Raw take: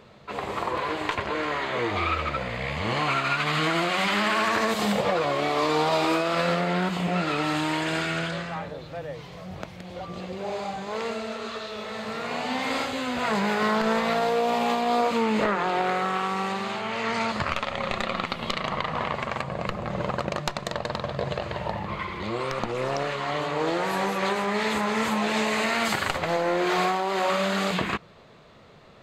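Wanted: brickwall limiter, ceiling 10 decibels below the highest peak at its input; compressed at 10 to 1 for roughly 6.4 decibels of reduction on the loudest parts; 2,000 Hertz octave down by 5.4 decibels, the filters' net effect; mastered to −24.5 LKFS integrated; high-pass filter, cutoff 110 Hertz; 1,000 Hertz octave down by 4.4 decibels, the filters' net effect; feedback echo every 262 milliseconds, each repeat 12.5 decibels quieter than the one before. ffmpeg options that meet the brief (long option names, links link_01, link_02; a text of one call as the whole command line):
ffmpeg -i in.wav -af "highpass=110,equalizer=frequency=1000:width_type=o:gain=-4.5,equalizer=frequency=2000:width_type=o:gain=-5.5,acompressor=threshold=-28dB:ratio=10,alimiter=limit=-24dB:level=0:latency=1,aecho=1:1:262|524|786:0.237|0.0569|0.0137,volume=9.5dB" out.wav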